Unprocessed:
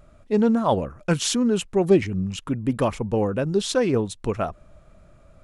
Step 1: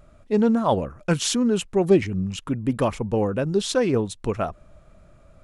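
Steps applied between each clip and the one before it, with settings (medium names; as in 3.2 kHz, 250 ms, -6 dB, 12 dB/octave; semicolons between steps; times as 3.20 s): no audible change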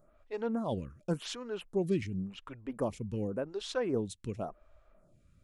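lamp-driven phase shifter 0.9 Hz; trim -9 dB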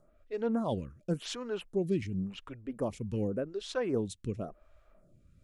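rotary cabinet horn 1.2 Hz; trim +3 dB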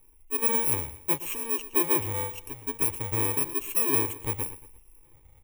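bit-reversed sample order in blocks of 64 samples; static phaser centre 970 Hz, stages 8; feedback delay 116 ms, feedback 40%, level -15 dB; trim +8 dB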